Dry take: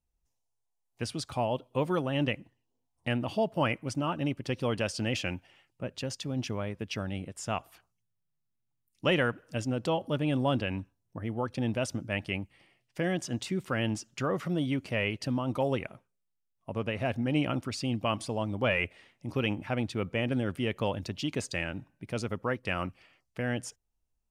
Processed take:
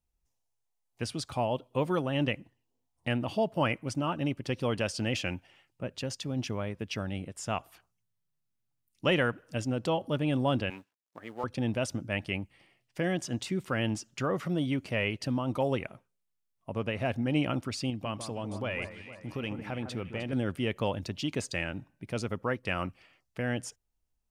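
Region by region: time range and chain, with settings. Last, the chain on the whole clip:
10.70–11.44 s: companding laws mixed up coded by A + frequency weighting A
17.90–20.33 s: compression 2:1, threshold -35 dBFS + echo whose repeats swap between lows and highs 153 ms, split 1.8 kHz, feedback 67%, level -8.5 dB
whole clip: none

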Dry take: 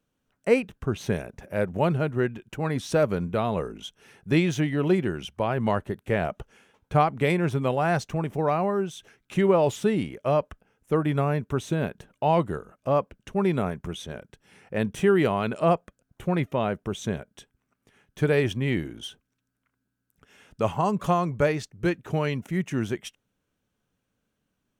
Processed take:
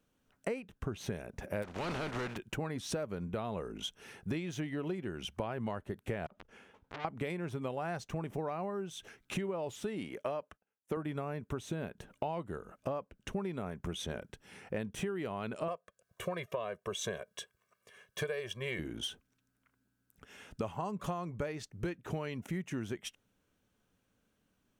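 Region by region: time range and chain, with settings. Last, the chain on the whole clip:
1.62–2.36 s: spectral contrast reduction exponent 0.32 + overload inside the chain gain 25.5 dB + tape spacing loss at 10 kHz 25 dB
6.26–7.05 s: treble shelf 4.4 kHz -11 dB + compression 12:1, threshold -30 dBFS + transformer saturation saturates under 2.9 kHz
9.84–10.97 s: high-pass 270 Hz 6 dB/octave + expander -54 dBFS
15.68–18.79 s: high-pass 450 Hz 6 dB/octave + comb 1.8 ms, depth 92%
whole clip: peaking EQ 140 Hz -5 dB 0.23 oct; compression 16:1, threshold -35 dBFS; trim +1.5 dB

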